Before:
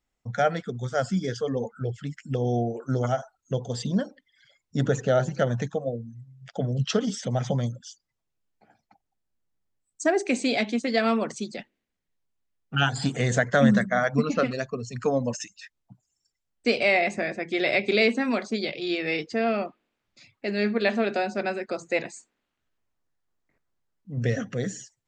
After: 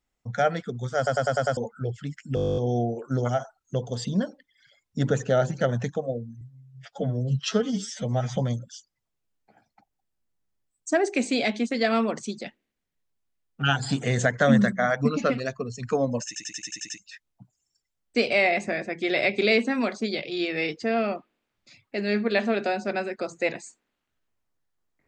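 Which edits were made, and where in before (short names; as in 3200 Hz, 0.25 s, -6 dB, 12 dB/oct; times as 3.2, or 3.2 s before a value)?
0.97 stutter in place 0.10 s, 6 plays
2.35 stutter 0.02 s, 12 plays
6.19–7.49 stretch 1.5×
15.4 stutter 0.09 s, 8 plays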